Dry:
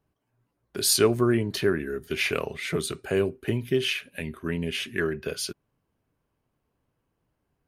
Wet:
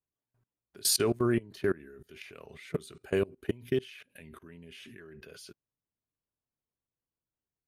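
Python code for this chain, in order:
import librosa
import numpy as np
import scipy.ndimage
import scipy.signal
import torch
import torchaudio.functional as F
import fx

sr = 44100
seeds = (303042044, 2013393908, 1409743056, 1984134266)

y = fx.level_steps(x, sr, step_db=24)
y = F.gain(torch.from_numpy(y), -1.5).numpy()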